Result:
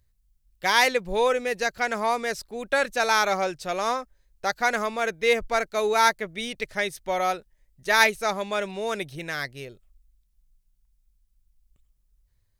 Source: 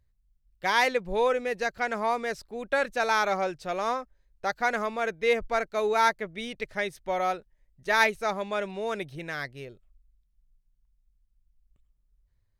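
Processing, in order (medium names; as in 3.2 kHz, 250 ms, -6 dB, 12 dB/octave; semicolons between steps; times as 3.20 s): treble shelf 3.9 kHz +9.5 dB; trim +2 dB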